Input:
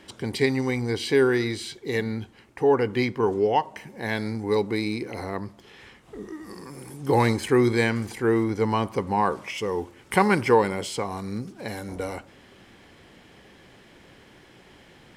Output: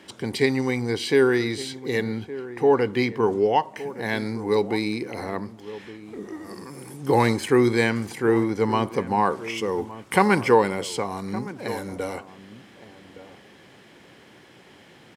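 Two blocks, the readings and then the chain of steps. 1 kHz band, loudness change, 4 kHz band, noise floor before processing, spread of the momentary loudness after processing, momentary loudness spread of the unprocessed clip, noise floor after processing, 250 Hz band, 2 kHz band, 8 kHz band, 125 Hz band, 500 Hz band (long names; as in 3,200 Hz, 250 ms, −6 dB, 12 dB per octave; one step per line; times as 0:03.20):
+1.5 dB, +1.5 dB, +1.5 dB, −53 dBFS, 17 LU, 17 LU, −51 dBFS, +1.5 dB, +1.5 dB, +1.5 dB, −0.5 dB, +1.5 dB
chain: high-pass filter 110 Hz
slap from a distant wall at 200 metres, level −15 dB
level +1.5 dB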